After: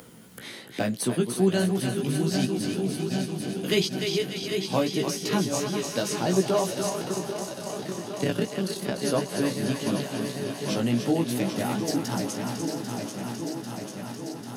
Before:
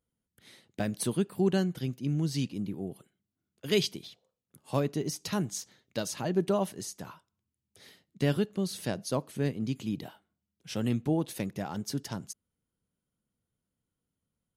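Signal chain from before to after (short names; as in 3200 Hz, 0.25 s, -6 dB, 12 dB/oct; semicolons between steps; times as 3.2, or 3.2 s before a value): regenerating reverse delay 0.397 s, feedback 80%, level -8 dB; 6.89–9.03 AM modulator 32 Hz, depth 100%; thinning echo 0.294 s, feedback 53%, high-pass 640 Hz, level -6.5 dB; chorus 2.8 Hz, delay 15.5 ms, depth 2.3 ms; upward compressor, threshold -49 dBFS; HPF 150 Hz 12 dB/oct; three-band squash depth 40%; gain +8.5 dB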